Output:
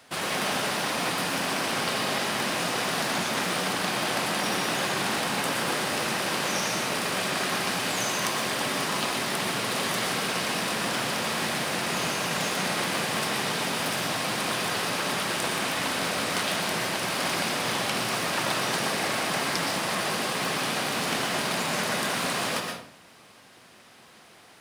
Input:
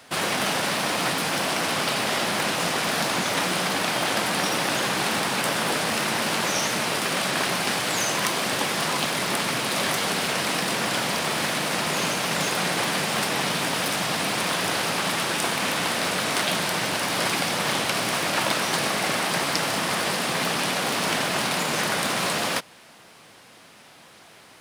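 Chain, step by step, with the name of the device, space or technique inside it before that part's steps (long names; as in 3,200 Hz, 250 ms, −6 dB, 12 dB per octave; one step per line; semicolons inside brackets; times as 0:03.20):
bathroom (convolution reverb RT60 0.60 s, pre-delay 110 ms, DRR 2 dB)
level −5 dB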